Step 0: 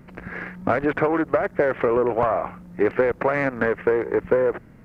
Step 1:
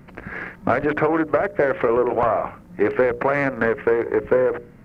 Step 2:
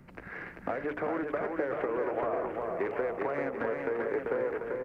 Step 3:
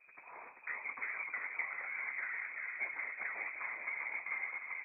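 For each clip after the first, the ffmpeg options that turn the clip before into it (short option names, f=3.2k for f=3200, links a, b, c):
-af "bandreject=f=60:t=h:w=6,bandreject=f=120:t=h:w=6,bandreject=f=180:t=h:w=6,bandreject=f=240:t=h:w=6,bandreject=f=300:t=h:w=6,bandreject=f=360:t=h:w=6,bandreject=f=420:t=h:w=6,bandreject=f=480:t=h:w=6,bandreject=f=540:t=h:w=6,bandreject=f=600:t=h:w=6,volume=2dB"
-filter_complex "[0:a]acrossover=split=290|650[a][b][c];[a]acompressor=threshold=-41dB:ratio=4[d];[b]acompressor=threshold=-24dB:ratio=4[e];[c]acompressor=threshold=-30dB:ratio=4[f];[d][e][f]amix=inputs=3:normalize=0,asplit=2[g][h];[h]aecho=0:1:390|741|1057|1341|1597:0.631|0.398|0.251|0.158|0.1[i];[g][i]amix=inputs=2:normalize=0,volume=-8.5dB"
-af "afftfilt=real='hypot(re,im)*cos(2*PI*random(0))':imag='hypot(re,im)*sin(2*PI*random(1))':win_size=512:overlap=0.75,flanger=delay=9.2:depth=5.2:regen=-58:speed=0.82:shape=sinusoidal,lowpass=f=2.2k:t=q:w=0.5098,lowpass=f=2.2k:t=q:w=0.6013,lowpass=f=2.2k:t=q:w=0.9,lowpass=f=2.2k:t=q:w=2.563,afreqshift=-2600,volume=1dB"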